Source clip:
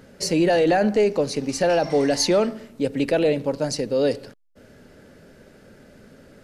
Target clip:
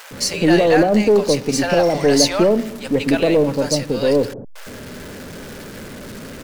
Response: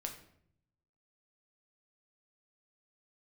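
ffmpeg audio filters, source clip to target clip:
-filter_complex "[0:a]aeval=exprs='val(0)+0.5*0.0168*sgn(val(0))':channel_layout=same,acrossover=split=730[link_01][link_02];[link_01]adelay=110[link_03];[link_03][link_02]amix=inputs=2:normalize=0,aeval=exprs='0.473*(cos(1*acos(clip(val(0)/0.473,-1,1)))-cos(1*PI/2))+0.0168*(cos(6*acos(clip(val(0)/0.473,-1,1)))-cos(6*PI/2))':channel_layout=same,volume=5.5dB"

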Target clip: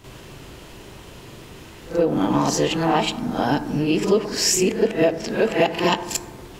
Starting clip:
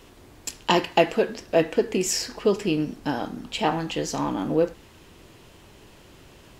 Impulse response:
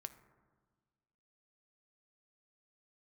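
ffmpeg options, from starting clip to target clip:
-filter_complex "[0:a]areverse,acompressor=threshold=-24dB:ratio=4,asplit=2[link_01][link_02];[1:a]atrim=start_sample=2205,adelay=41[link_03];[link_02][link_03]afir=irnorm=-1:irlink=0,volume=13dB[link_04];[link_01][link_04]amix=inputs=2:normalize=0"

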